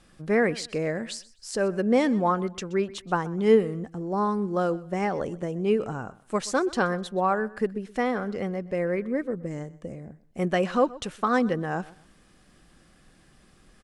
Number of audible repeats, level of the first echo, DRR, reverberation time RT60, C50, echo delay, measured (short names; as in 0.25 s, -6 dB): 2, -20.0 dB, none, none, none, 0.126 s